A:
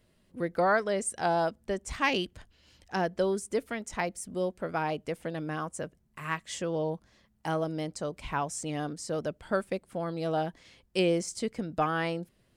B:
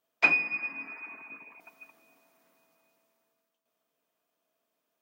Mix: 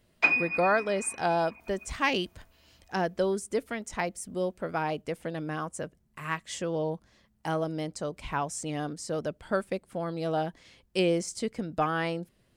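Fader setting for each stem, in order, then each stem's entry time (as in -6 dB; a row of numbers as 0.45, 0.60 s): +0.5, -0.5 dB; 0.00, 0.00 s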